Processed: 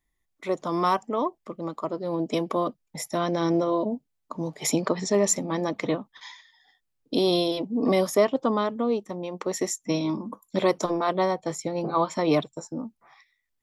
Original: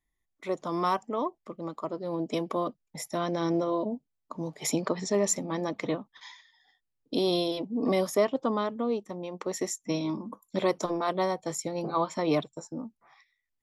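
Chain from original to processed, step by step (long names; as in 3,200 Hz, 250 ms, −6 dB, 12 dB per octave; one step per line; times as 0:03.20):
0:10.94–0:11.97: high-shelf EQ 9,300 Hz → 6,000 Hz −11.5 dB
level +4 dB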